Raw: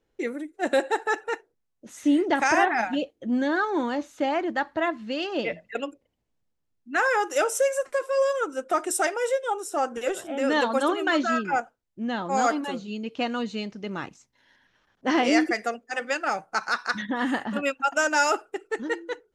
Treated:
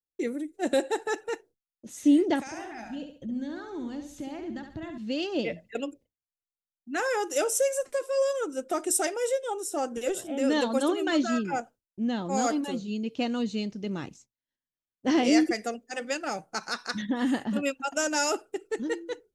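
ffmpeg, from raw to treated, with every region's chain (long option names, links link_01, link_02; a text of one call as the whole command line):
ffmpeg -i in.wav -filter_complex "[0:a]asettb=1/sr,asplit=3[link_01][link_02][link_03];[link_01]atrim=end=2.404[link_04];[link_02]atrim=start=2.4:end=4.98,asetpts=PTS-STARTPTS,afade=type=in:duration=0.004:curve=qsin,afade=type=out:start_time=2.576:duration=0.004:curve=qsin,asubboost=boost=11:cutoff=180,acompressor=threshold=-39dB:ratio=2.5:attack=3.2:release=140:knee=1:detection=peak,aecho=1:1:69|138|207|276:0.447|0.165|0.0612|0.0226,atrim=end_sample=113778[link_05];[link_03]atrim=start=4.976[link_06];[link_04][link_05]acrossfade=duration=0.004:curve1=hsin:curve2=qsin[link_07];[link_07][link_06]acrossfade=duration=0.004:curve1=qsin:curve2=hsin,equalizer=frequency=1300:width=0.52:gain=-12.5,agate=range=-33dB:threshold=-51dB:ratio=3:detection=peak,volume=3.5dB" out.wav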